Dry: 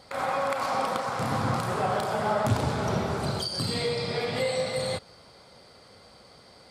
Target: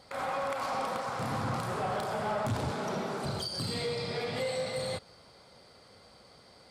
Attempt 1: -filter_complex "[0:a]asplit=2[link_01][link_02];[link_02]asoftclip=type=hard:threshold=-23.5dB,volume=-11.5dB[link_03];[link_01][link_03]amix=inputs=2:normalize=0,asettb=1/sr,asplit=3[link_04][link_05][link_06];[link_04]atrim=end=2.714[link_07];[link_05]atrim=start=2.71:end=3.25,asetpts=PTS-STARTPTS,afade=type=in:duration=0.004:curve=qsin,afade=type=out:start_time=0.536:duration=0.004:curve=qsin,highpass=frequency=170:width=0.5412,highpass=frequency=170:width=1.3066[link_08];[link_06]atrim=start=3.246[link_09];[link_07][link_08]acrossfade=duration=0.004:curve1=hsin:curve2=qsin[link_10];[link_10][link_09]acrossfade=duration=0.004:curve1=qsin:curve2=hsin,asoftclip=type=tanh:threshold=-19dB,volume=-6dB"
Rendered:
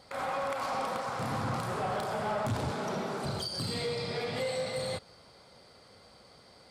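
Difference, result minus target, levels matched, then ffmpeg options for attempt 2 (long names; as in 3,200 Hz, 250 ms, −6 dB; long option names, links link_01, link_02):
hard clipping: distortion +18 dB
-filter_complex "[0:a]asplit=2[link_01][link_02];[link_02]asoftclip=type=hard:threshold=-16.5dB,volume=-11.5dB[link_03];[link_01][link_03]amix=inputs=2:normalize=0,asettb=1/sr,asplit=3[link_04][link_05][link_06];[link_04]atrim=end=2.714[link_07];[link_05]atrim=start=2.71:end=3.25,asetpts=PTS-STARTPTS,afade=type=in:duration=0.004:curve=qsin,afade=type=out:start_time=0.536:duration=0.004:curve=qsin,highpass=frequency=170:width=0.5412,highpass=frequency=170:width=1.3066[link_08];[link_06]atrim=start=3.246[link_09];[link_07][link_08]acrossfade=duration=0.004:curve1=hsin:curve2=qsin[link_10];[link_10][link_09]acrossfade=duration=0.004:curve1=qsin:curve2=hsin,asoftclip=type=tanh:threshold=-19dB,volume=-6dB"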